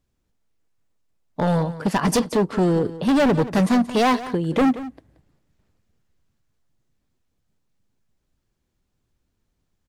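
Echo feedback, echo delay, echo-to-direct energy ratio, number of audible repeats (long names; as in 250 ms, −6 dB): repeats not evenly spaced, 178 ms, −15.0 dB, 1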